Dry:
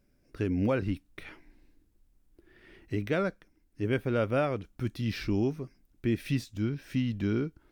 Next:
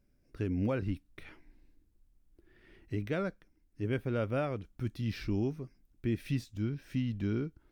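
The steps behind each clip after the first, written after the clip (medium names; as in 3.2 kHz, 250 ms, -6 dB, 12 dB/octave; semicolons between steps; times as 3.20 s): bass shelf 180 Hz +5.5 dB; trim -6 dB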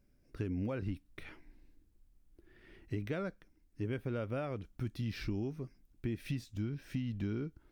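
compression, threshold -34 dBFS, peak gain reduction 7.5 dB; trim +1 dB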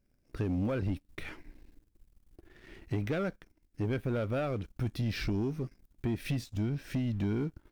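waveshaping leveller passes 2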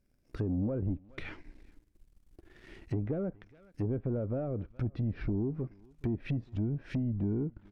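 echo from a far wall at 72 m, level -27 dB; low-pass that closes with the level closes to 580 Hz, closed at -29 dBFS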